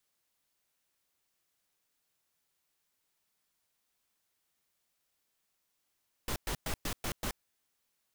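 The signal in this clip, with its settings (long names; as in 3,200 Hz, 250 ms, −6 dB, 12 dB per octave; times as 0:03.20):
noise bursts pink, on 0.08 s, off 0.11 s, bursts 6, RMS −34.5 dBFS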